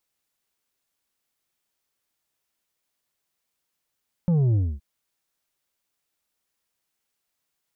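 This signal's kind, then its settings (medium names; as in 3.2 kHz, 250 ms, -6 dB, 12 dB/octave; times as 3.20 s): sub drop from 180 Hz, over 0.52 s, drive 6 dB, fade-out 0.25 s, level -18 dB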